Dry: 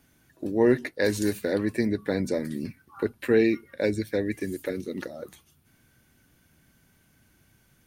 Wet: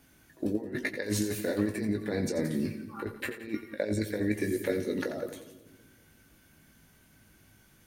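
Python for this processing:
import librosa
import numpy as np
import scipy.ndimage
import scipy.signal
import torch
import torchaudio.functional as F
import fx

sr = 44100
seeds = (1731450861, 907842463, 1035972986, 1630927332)

p1 = fx.peak_eq(x, sr, hz=130.0, db=-3.0, octaves=0.73)
p2 = fx.over_compress(p1, sr, threshold_db=-28.0, ratio=-0.5)
p3 = fx.doubler(p2, sr, ms=19.0, db=-7.0)
p4 = p3 + fx.echo_split(p3, sr, split_hz=370.0, low_ms=189, high_ms=87, feedback_pct=52, wet_db=-10.5, dry=0)
y = p4 * 10.0 ** (-2.5 / 20.0)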